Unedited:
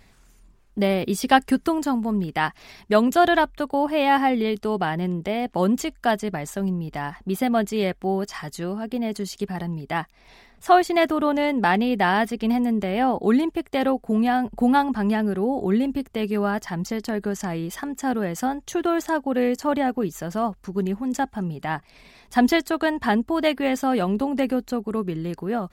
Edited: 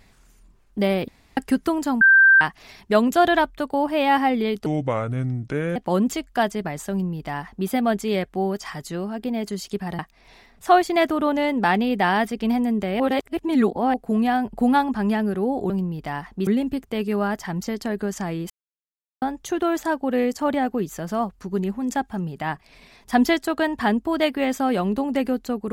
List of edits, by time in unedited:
0:01.08–0:01.37: fill with room tone
0:02.01–0:02.41: beep over 1,570 Hz −9.5 dBFS
0:04.66–0:05.44: play speed 71%
0:06.59–0:07.36: duplicate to 0:15.70
0:09.67–0:09.99: remove
0:13.00–0:13.94: reverse
0:17.73–0:18.45: silence

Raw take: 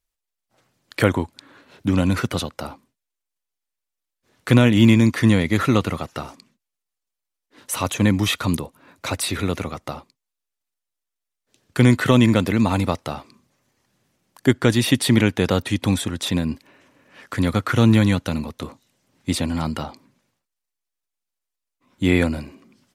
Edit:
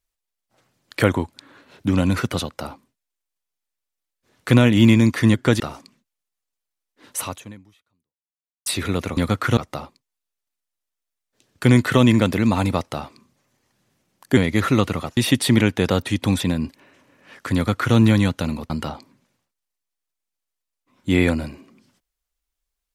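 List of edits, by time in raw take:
0:05.34–0:06.14: swap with 0:14.51–0:14.77
0:07.73–0:09.20: fade out exponential
0:16.00–0:16.27: remove
0:17.42–0:17.82: duplicate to 0:09.71
0:18.57–0:19.64: remove

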